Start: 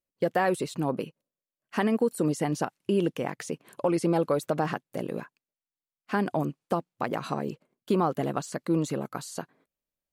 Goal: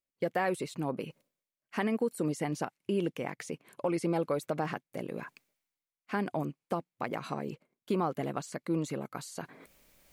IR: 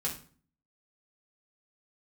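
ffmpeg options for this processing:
-af "equalizer=frequency=2200:width_type=o:width=0.29:gain=6.5,areverse,acompressor=mode=upward:threshold=-32dB:ratio=2.5,areverse,volume=-5.5dB"

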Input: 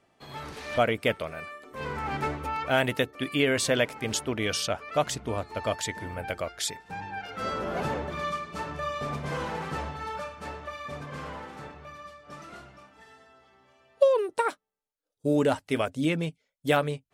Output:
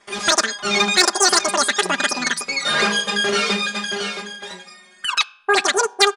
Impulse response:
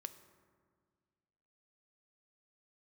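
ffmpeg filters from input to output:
-filter_complex "[0:a]asplit=2[link_01][link_02];[1:a]atrim=start_sample=2205,lowpass=4300[link_03];[link_02][link_03]afir=irnorm=-1:irlink=0,volume=-7dB[link_04];[link_01][link_04]amix=inputs=2:normalize=0,afftfilt=real='re*lt(hypot(re,im),0.562)':imag='im*lt(hypot(re,im),0.562)':win_size=1024:overlap=0.75,adynamicequalizer=threshold=0.00794:dfrequency=1700:dqfactor=1.3:tfrequency=1700:tqfactor=1.3:attack=5:release=100:ratio=0.375:range=2:mode=boostabove:tftype=bell,aresample=8000,aresample=44100,asetrate=122598,aresample=44100,aecho=1:1:5:0.67,acontrast=67,volume=1.5dB"

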